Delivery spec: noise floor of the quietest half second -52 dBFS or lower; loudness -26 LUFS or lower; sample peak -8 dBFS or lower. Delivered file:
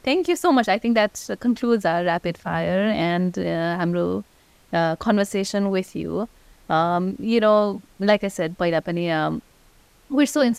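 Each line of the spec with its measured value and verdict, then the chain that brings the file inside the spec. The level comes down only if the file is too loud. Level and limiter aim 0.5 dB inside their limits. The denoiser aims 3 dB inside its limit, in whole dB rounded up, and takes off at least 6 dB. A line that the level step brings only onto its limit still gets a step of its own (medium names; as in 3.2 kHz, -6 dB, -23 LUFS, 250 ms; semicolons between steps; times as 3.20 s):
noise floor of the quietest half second -55 dBFS: pass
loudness -22.0 LUFS: fail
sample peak -4.5 dBFS: fail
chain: trim -4.5 dB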